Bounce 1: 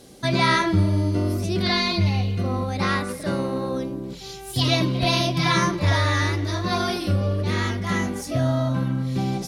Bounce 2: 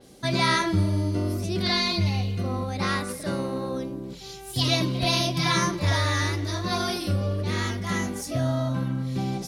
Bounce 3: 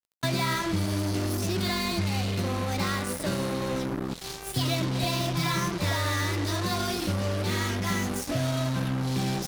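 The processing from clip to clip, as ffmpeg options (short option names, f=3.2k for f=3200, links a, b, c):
-af "adynamicequalizer=threshold=0.0141:dfrequency=4200:dqfactor=0.7:tfrequency=4200:tqfactor=0.7:attack=5:release=100:ratio=0.375:range=3:mode=boostabove:tftype=highshelf,volume=-3.5dB"
-filter_complex "[0:a]acrossover=split=140|2300[a][b][c];[a]acompressor=threshold=-39dB:ratio=4[d];[b]acompressor=threshold=-35dB:ratio=4[e];[c]acompressor=threshold=-42dB:ratio=4[f];[d][e][f]amix=inputs=3:normalize=0,acrusher=bits=5:mix=0:aa=0.5,volume=5.5dB"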